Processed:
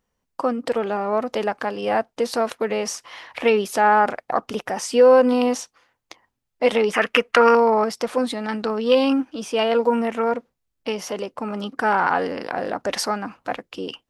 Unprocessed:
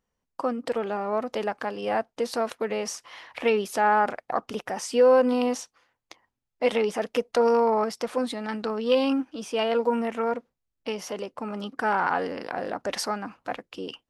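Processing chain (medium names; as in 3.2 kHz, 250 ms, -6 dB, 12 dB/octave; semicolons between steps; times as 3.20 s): 6.93–7.55 s: high-order bell 1.8 kHz +13 dB; trim +5 dB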